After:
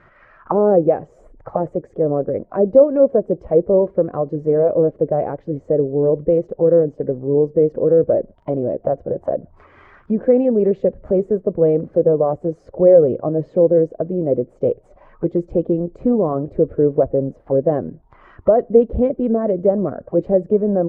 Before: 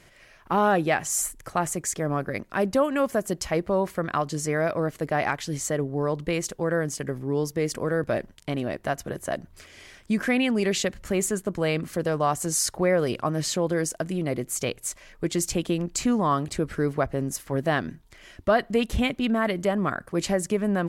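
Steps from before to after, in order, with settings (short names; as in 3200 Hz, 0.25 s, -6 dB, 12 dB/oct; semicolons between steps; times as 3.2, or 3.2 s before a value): bin magnitudes rounded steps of 15 dB; envelope low-pass 510–1400 Hz down, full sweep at -27 dBFS; gain +3.5 dB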